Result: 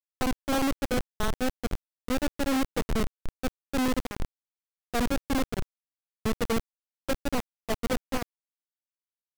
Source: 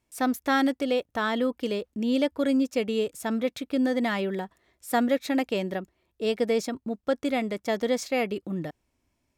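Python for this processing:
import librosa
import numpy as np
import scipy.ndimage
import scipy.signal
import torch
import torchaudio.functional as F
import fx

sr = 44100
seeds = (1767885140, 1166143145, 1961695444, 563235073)

y = fx.echo_feedback(x, sr, ms=303, feedback_pct=51, wet_db=-20.0)
y = fx.schmitt(y, sr, flips_db=-21.0)
y = fx.quant_companded(y, sr, bits=2)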